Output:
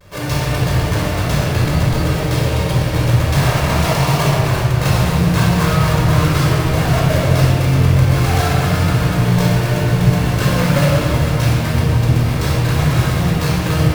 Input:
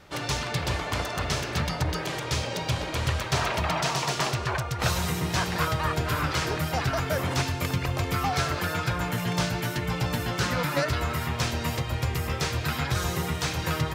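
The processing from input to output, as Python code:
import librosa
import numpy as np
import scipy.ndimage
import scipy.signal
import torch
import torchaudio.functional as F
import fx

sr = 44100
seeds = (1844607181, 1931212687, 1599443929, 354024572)

y = fx.halfwave_hold(x, sr)
y = fx.room_shoebox(y, sr, seeds[0], volume_m3=2800.0, walls='mixed', distance_m=5.4)
y = fx.vibrato(y, sr, rate_hz=0.33, depth_cents=19.0)
y = y * librosa.db_to_amplitude(-3.0)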